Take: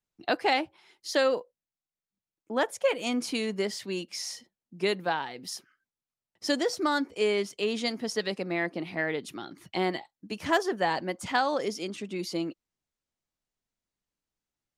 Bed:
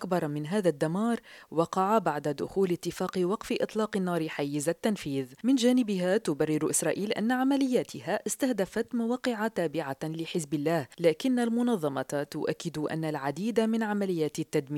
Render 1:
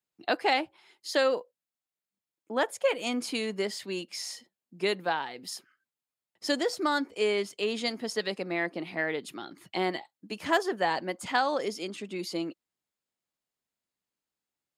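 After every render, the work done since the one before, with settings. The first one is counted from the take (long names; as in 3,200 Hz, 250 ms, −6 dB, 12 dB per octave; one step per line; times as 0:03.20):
high-pass filter 210 Hz 6 dB per octave
notch filter 5,800 Hz, Q 10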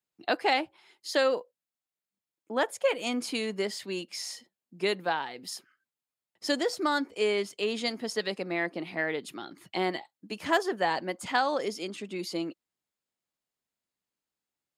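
no processing that can be heard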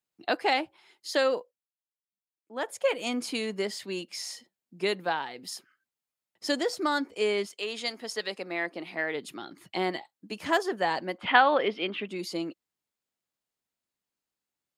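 0:01.38–0:02.77: duck −13.5 dB, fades 0.27 s
0:07.45–0:09.14: high-pass filter 810 Hz → 270 Hz 6 dB per octave
0:11.18–0:12.08: drawn EQ curve 110 Hz 0 dB, 3,100 Hz +10 dB, 7,000 Hz −28 dB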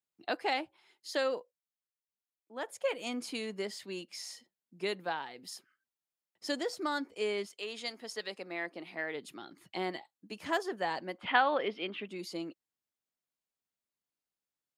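level −6.5 dB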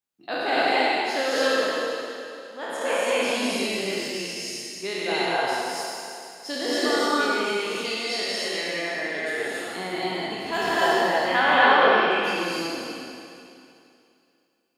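peak hold with a decay on every bin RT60 2.63 s
reverb whose tail is shaped and stops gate 310 ms rising, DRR −6 dB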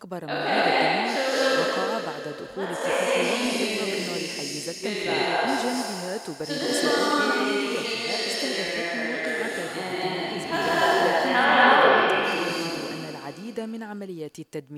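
mix in bed −6 dB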